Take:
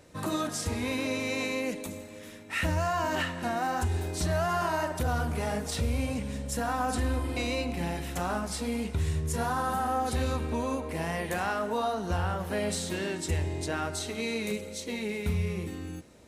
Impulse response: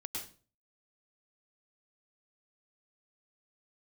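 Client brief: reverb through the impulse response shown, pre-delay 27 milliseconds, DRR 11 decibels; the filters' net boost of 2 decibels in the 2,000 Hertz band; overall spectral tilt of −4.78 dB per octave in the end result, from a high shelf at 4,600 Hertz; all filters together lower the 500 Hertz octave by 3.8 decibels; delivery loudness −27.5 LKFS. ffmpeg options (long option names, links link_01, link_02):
-filter_complex "[0:a]equalizer=frequency=500:width_type=o:gain=-5,equalizer=frequency=2000:width_type=o:gain=4.5,highshelf=frequency=4600:gain=-9,asplit=2[link_01][link_02];[1:a]atrim=start_sample=2205,adelay=27[link_03];[link_02][link_03]afir=irnorm=-1:irlink=0,volume=-10.5dB[link_04];[link_01][link_04]amix=inputs=2:normalize=0,volume=4dB"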